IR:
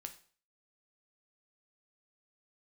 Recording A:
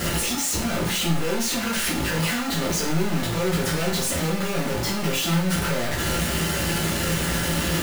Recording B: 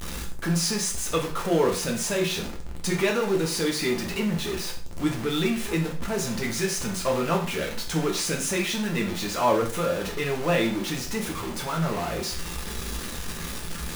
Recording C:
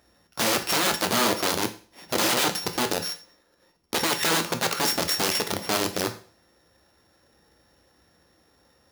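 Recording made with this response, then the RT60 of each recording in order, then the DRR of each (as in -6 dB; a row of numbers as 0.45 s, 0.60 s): C; 0.45 s, 0.45 s, 0.45 s; -5.0 dB, -0.5 dB, 6.0 dB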